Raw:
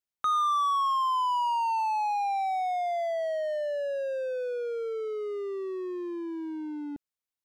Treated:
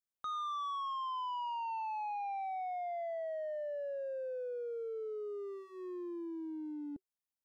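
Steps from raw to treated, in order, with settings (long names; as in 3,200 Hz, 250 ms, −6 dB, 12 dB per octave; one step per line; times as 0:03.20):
parametric band 2,600 Hz −6 dB 2.2 octaves
notch filter 380 Hz, Q 12
soft clipping −31.5 dBFS, distortion −14 dB
level −4.5 dB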